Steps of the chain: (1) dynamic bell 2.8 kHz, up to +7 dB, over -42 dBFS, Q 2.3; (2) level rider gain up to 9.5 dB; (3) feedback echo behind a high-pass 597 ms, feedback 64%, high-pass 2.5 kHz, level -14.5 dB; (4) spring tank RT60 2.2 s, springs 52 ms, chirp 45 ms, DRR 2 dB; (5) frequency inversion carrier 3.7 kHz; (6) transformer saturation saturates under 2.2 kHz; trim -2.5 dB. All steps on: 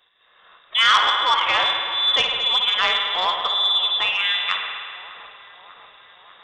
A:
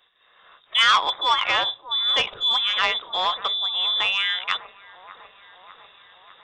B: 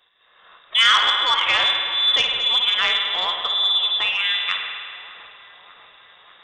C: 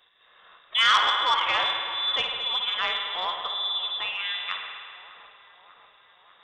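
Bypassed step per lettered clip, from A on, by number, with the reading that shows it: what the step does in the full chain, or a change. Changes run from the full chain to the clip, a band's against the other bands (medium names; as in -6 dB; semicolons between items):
4, momentary loudness spread change -4 LU; 1, momentary loudness spread change -1 LU; 2, crest factor change +2.0 dB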